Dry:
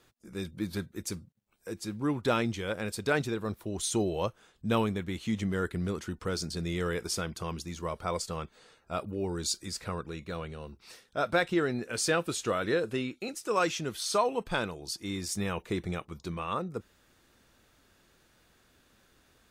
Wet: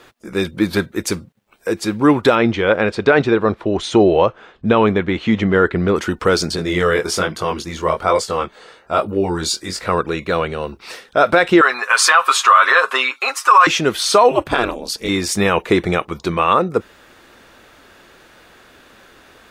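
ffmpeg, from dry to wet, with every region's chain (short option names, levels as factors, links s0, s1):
-filter_complex "[0:a]asettb=1/sr,asplit=3[s0][s1][s2];[s0]atrim=end=2.354[s3];[s1]atrim=start=2.35:end=5.96,asetpts=PTS-STARTPTS,afade=t=in:d=0.004:c=qsin,afade=t=out:st=3.606:d=0.004:c=qsin,lowpass=5200,highshelf=f=3700:g=-8.5[s4];[s2]atrim=start=5.956[s5];[s3][s4]acrossfade=d=0.004:c1=hsin:c2=qsin[s6];[s6][s5]acrossfade=d=0.004:c1=qsin:c2=hsin,asettb=1/sr,asplit=3[s7][s8][s9];[s7]atrim=end=6.564[s10];[s8]atrim=start=6.56:end=9.89,asetpts=PTS-STARTPTS,afade=t=in:d=0.004:c=qsin,afade=t=out:st=3.326:d=0.004:c=qsin,bandreject=f=2500:w=18,flanger=delay=19:depth=6.6:speed=1.2[s11];[s9]atrim=start=9.886[s12];[s10][s11]acrossfade=d=0.004:c1=hsin:c2=qsin[s13];[s13][s12]acrossfade=d=0.004:c1=qsin:c2=hsin,asettb=1/sr,asplit=3[s14][s15][s16];[s14]atrim=end=11.614[s17];[s15]atrim=start=11.61:end=13.67,asetpts=PTS-STARTPTS,afade=t=in:d=0.004:c=qsin,afade=t=out:st=2.056:d=0.004:c=qsin,highpass=f=1100:t=q:w=5.5,aecho=1:1:7.4:0.74,atrim=end_sample=90846[s18];[s16]atrim=start=13.666[s19];[s17][s18]acrossfade=d=0.004:c1=hsin:c2=qsin[s20];[s20][s19]acrossfade=d=0.004:c1=qsin:c2=hsin,asettb=1/sr,asplit=3[s21][s22][s23];[s21]atrim=end=14.314[s24];[s22]atrim=start=14.31:end=15.09,asetpts=PTS-STARTPTS,afade=t=in:d=0.004:c=qsin,afade=t=out:st=0.776:d=0.004:c=qsin,highshelf=f=9800:g=4.5,aeval=exprs='val(0)*sin(2*PI*120*n/s)':c=same[s25];[s23]atrim=start=15.086[s26];[s24][s25]acrossfade=d=0.004:c1=hsin:c2=qsin[s27];[s27][s26]acrossfade=d=0.004:c1=qsin:c2=hsin,bass=f=250:g=-10,treble=f=4000:g=-9,alimiter=level_in=12.6:limit=0.891:release=50:level=0:latency=1,volume=0.891"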